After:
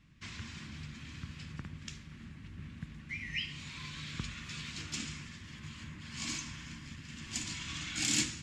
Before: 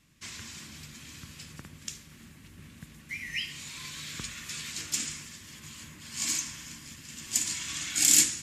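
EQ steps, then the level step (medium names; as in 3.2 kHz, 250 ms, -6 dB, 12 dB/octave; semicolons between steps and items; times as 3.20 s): tape spacing loss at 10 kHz 26 dB; dynamic bell 1.8 kHz, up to -4 dB, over -54 dBFS, Q 1.9; peaking EQ 520 Hz -9 dB 1.9 oct; +6.0 dB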